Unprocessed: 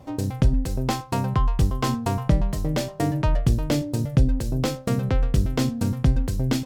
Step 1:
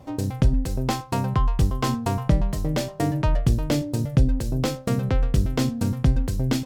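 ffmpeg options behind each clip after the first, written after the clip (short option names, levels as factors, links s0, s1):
-af anull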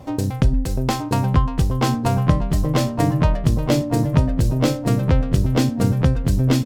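-filter_complex "[0:a]asplit=2[s0][s1];[s1]acompressor=threshold=0.0447:ratio=6,volume=1.06[s2];[s0][s2]amix=inputs=2:normalize=0,asplit=2[s3][s4];[s4]adelay=925,lowpass=f=1900:p=1,volume=0.708,asplit=2[s5][s6];[s6]adelay=925,lowpass=f=1900:p=1,volume=0.4,asplit=2[s7][s8];[s8]adelay=925,lowpass=f=1900:p=1,volume=0.4,asplit=2[s9][s10];[s10]adelay=925,lowpass=f=1900:p=1,volume=0.4,asplit=2[s11][s12];[s12]adelay=925,lowpass=f=1900:p=1,volume=0.4[s13];[s3][s5][s7][s9][s11][s13]amix=inputs=6:normalize=0"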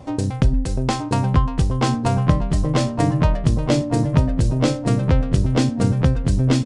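-af "aresample=22050,aresample=44100"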